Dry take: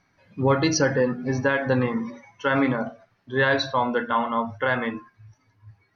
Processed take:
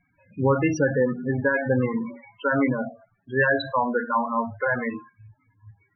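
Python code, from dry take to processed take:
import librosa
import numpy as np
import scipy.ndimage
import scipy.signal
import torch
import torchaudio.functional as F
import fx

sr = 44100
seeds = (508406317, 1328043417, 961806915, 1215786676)

y = fx.high_shelf_res(x, sr, hz=3800.0, db=-6.5, q=3.0)
y = fx.env_lowpass(y, sr, base_hz=2600.0, full_db=-16.5)
y = fx.spec_topn(y, sr, count=16)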